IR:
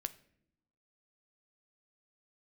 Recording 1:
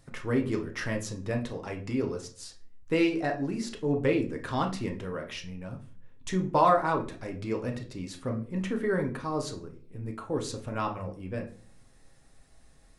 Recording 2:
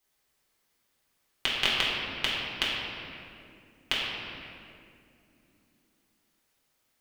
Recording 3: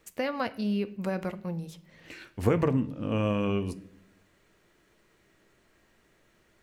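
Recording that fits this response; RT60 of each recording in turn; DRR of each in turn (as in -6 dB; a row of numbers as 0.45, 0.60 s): 3; 0.45 s, 2.7 s, not exponential; 2.5, -7.0, 11.0 dB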